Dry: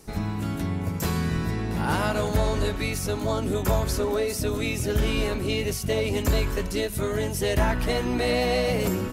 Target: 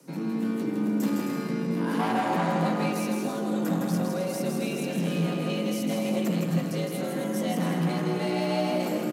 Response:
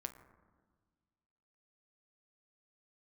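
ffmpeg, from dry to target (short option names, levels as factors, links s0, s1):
-filter_complex "[0:a]asettb=1/sr,asplit=3[s0][s1][s2];[s0]atrim=end=1.994[s3];[s1]atrim=start=1.99:end=2.92,asetpts=PTS-STARTPTS,afade=t=in:d=0.004:c=qsin,afade=t=out:st=0.926:d=0.004:c=qsin,equalizer=f=740:t=o:w=1.4:g=14[s4];[s2]atrim=start=2.916[s5];[s3][s4]acrossfade=d=0.004:c1=hsin:c2=qsin[s6];[s6][s5]acrossfade=d=0.004:c1=qsin:c2=hsin,acrossover=split=190[s7][s8];[s7]acontrast=71[s9];[s9][s8]amix=inputs=2:normalize=0,asoftclip=type=tanh:threshold=0.126,afreqshift=120,aecho=1:1:160|264|331.6|375.5|404.1:0.631|0.398|0.251|0.158|0.1[s10];[1:a]atrim=start_sample=2205,asetrate=61740,aresample=44100[s11];[s10][s11]afir=irnorm=-1:irlink=0"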